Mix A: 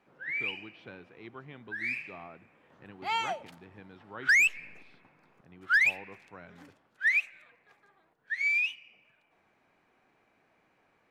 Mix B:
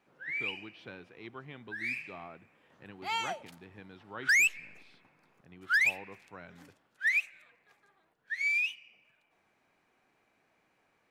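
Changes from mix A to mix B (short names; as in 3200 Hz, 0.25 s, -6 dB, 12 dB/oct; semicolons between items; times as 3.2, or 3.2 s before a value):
background -4.0 dB; master: add high shelf 4400 Hz +9.5 dB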